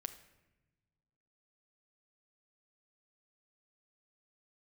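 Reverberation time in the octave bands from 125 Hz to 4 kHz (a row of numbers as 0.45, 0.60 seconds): 2.1, 1.9, 1.2, 0.90, 1.0, 0.70 seconds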